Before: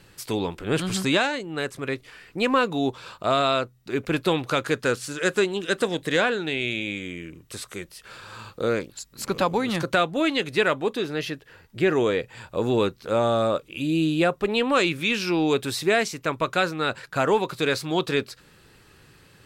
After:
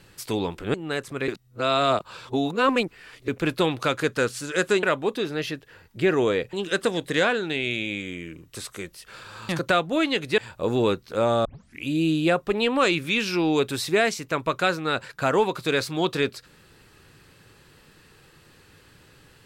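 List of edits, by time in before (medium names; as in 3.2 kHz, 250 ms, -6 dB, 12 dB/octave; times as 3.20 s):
0.74–1.41 s: delete
1.95–3.95 s: reverse
8.46–9.73 s: delete
10.62–12.32 s: move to 5.50 s
13.39 s: tape start 0.39 s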